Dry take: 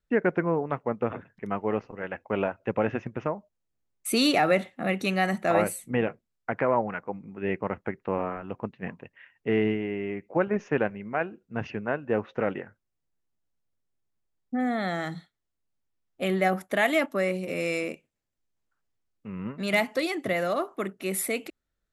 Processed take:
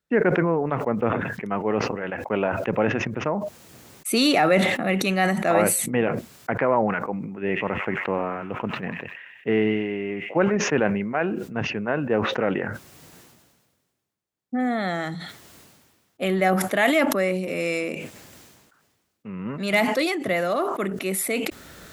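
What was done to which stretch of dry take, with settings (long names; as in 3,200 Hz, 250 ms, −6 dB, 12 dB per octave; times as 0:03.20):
0:07.30–0:10.52: delay with a high-pass on its return 94 ms, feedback 63%, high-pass 2,700 Hz, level −4.5 dB
whole clip: high-pass filter 110 Hz; level that may fall only so fast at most 38 dB per second; level +3 dB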